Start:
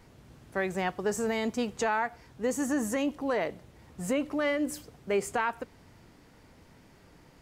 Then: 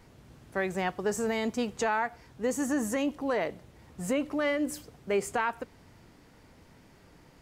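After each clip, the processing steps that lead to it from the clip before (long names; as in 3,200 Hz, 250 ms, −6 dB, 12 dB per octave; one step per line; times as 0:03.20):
no processing that can be heard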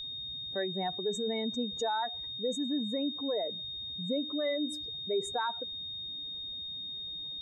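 expanding power law on the bin magnitudes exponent 2.2
steady tone 3,700 Hz −34 dBFS
level −3.5 dB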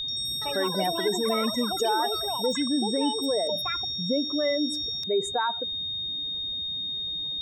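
reversed playback
upward compression, threshold −34 dBFS
reversed playback
delay with pitch and tempo change per echo 84 ms, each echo +7 semitones, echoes 3, each echo −6 dB
level +6 dB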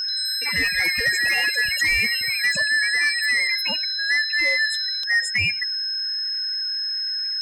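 band-splitting scrambler in four parts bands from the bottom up 2143
soft clipping −18 dBFS, distortion −21 dB
level +6 dB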